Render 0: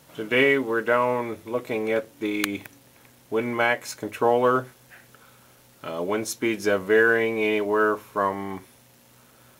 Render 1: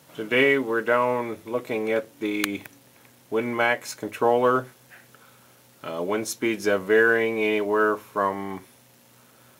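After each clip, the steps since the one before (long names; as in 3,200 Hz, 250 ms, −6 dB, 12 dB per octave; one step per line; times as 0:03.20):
high-pass filter 94 Hz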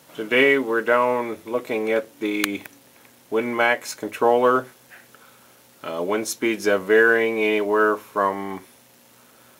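parametric band 120 Hz −7 dB 0.97 octaves
level +3 dB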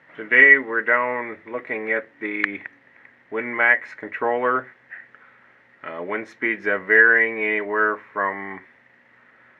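low-pass with resonance 1,900 Hz, resonance Q 9.1
level −6 dB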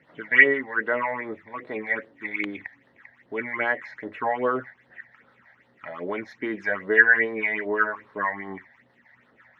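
all-pass phaser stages 8, 2.5 Hz, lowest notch 340–2,400 Hz
two-band tremolo in antiphase 6.1 Hz, depth 50%, crossover 780 Hz
level +2 dB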